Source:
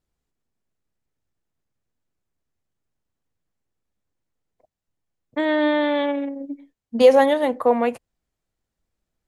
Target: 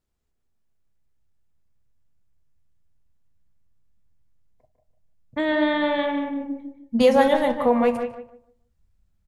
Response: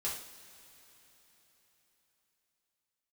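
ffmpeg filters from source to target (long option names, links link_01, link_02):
-filter_complex "[0:a]asplit=2[link_01][link_02];[link_02]adelay=180,highpass=300,lowpass=3400,asoftclip=type=hard:threshold=-12.5dB,volume=-10dB[link_03];[link_01][link_03]amix=inputs=2:normalize=0,asplit=2[link_04][link_05];[1:a]atrim=start_sample=2205,atrim=end_sample=3087[link_06];[link_05][link_06]afir=irnorm=-1:irlink=0,volume=-9.5dB[link_07];[link_04][link_07]amix=inputs=2:normalize=0,asubboost=boost=6.5:cutoff=150,asplit=2[link_08][link_09];[link_09]adelay=151,lowpass=frequency=1100:poles=1,volume=-5.5dB,asplit=2[link_10][link_11];[link_11]adelay=151,lowpass=frequency=1100:poles=1,volume=0.29,asplit=2[link_12][link_13];[link_13]adelay=151,lowpass=frequency=1100:poles=1,volume=0.29,asplit=2[link_14][link_15];[link_15]adelay=151,lowpass=frequency=1100:poles=1,volume=0.29[link_16];[link_10][link_12][link_14][link_16]amix=inputs=4:normalize=0[link_17];[link_08][link_17]amix=inputs=2:normalize=0,volume=-2.5dB"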